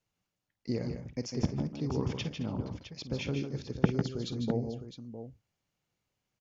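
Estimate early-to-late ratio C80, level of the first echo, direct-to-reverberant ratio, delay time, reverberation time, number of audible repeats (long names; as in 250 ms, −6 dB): no reverb audible, −14.5 dB, no reverb audible, 50 ms, no reverb audible, 4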